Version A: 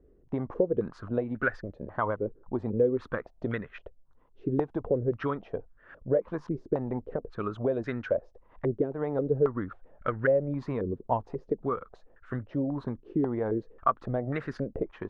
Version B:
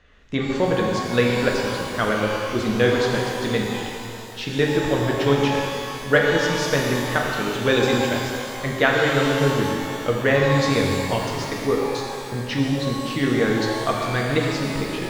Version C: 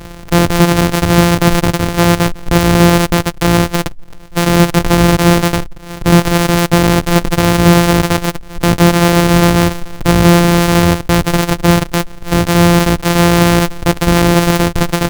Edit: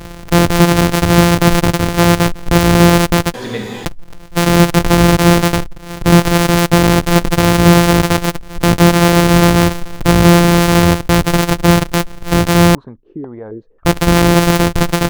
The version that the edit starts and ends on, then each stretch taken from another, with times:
C
3.34–3.85 s: from B
12.75–13.85 s: from A

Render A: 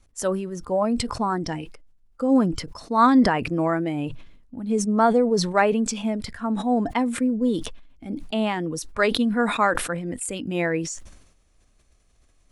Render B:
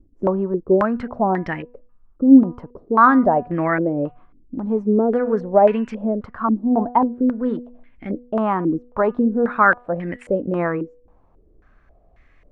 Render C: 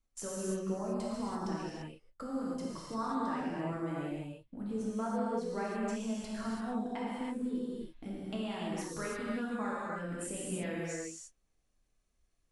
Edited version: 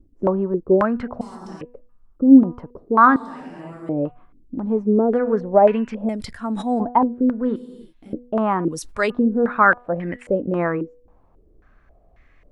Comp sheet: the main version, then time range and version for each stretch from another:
B
1.21–1.61 s: from C
3.16–3.89 s: from C
6.09–6.80 s: from A
7.56–8.13 s: from C
8.68–9.10 s: from A

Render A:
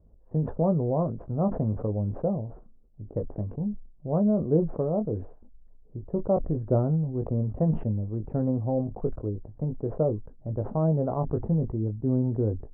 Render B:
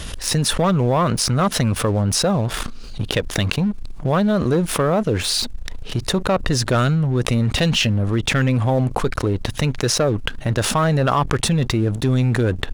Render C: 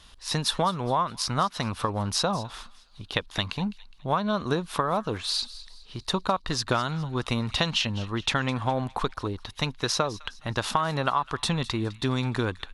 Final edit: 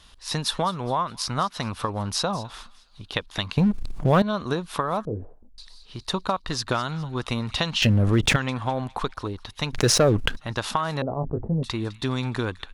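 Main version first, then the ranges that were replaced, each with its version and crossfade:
C
3.57–4.22 s: from B
5.05–5.58 s: from A
7.82–8.36 s: from B
9.73–10.37 s: from B
11.02–11.63 s: from A

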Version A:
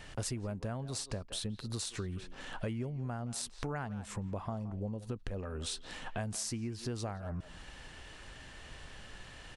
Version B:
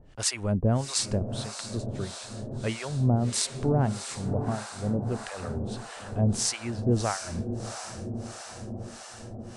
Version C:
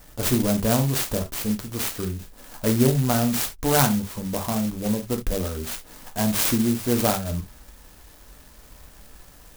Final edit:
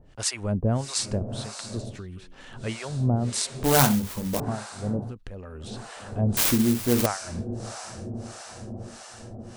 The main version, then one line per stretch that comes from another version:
B
1.92–2.60 s: from A, crossfade 0.24 s
3.64–4.40 s: from C
5.07–5.68 s: from A, crossfade 0.16 s
6.37–7.06 s: from C

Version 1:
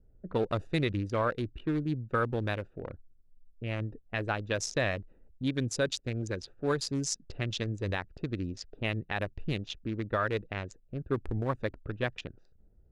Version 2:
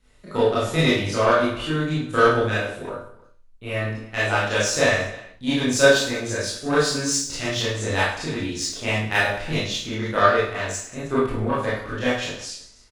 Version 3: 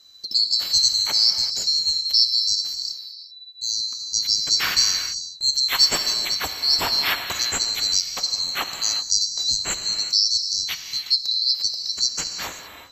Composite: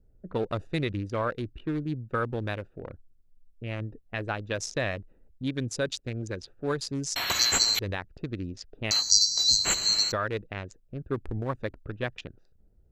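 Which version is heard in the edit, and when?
1
7.16–7.79 s: from 3
8.91–10.12 s: from 3
not used: 2

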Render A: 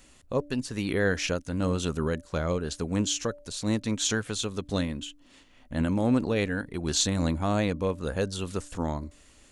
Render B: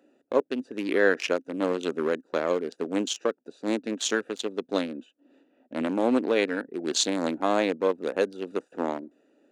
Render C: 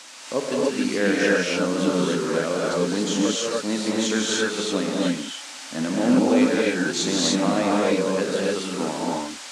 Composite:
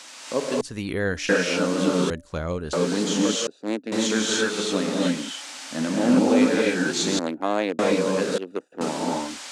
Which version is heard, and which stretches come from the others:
C
0.61–1.29 s: from A
2.10–2.73 s: from A
3.47–3.92 s: from B
7.19–7.79 s: from B
8.38–8.81 s: from B

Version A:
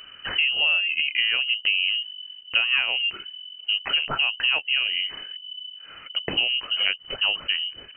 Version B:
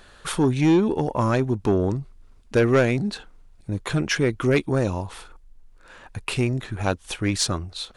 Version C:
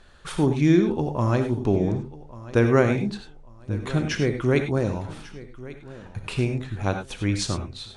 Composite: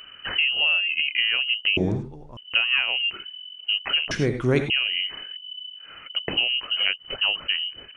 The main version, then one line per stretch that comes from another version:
A
1.77–2.37 s: from C
4.11–4.70 s: from C
not used: B

